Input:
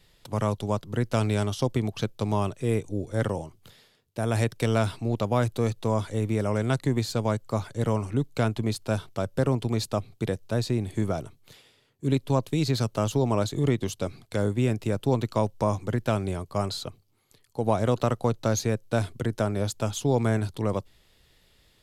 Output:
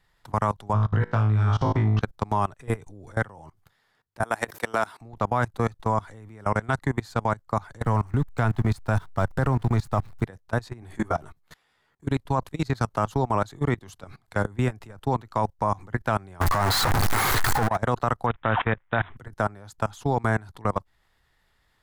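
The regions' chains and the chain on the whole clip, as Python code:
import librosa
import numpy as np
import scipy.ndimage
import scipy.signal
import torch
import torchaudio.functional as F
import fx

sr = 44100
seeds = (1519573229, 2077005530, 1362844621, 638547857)

y = fx.chain(x, sr, fx.gaussian_blur(sigma=1.6),
    fx.peak_eq(hz=110.0, db=8.5, octaves=1.1),
    fx.room_flutter(wall_m=3.2, rt60_s=0.51), at=(0.73, 2.01))
y = fx.chain(y, sr, fx.highpass(hz=290.0, slope=12),
    fx.high_shelf(hz=10000.0, db=10.5),
    fx.pre_swell(db_per_s=65.0), at=(4.23, 5.01))
y = fx.chain(y, sr, fx.zero_step(step_db=-39.5),
    fx.low_shelf(hz=110.0, db=11.5), at=(7.84, 10.24))
y = fx.chain(y, sr, fx.peak_eq(hz=120.0, db=-11.5, octaves=0.25),
    fx.doubler(ms=13.0, db=-2), at=(10.81, 12.05))
y = fx.chain(y, sr, fx.zero_step(step_db=-29.0),
    fx.over_compress(threshold_db=-27.0, ratio=-0.5),
    fx.leveller(passes=3), at=(16.41, 17.76))
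y = fx.chain(y, sr, fx.high_shelf(hz=2600.0, db=10.5),
    fx.resample_bad(factor=6, down='none', up='filtered'), at=(18.26, 19.17))
y = fx.band_shelf(y, sr, hz=1200.0, db=11.0, octaves=1.7)
y = fx.level_steps(y, sr, step_db=23)
y = fx.low_shelf(y, sr, hz=120.0, db=5.5)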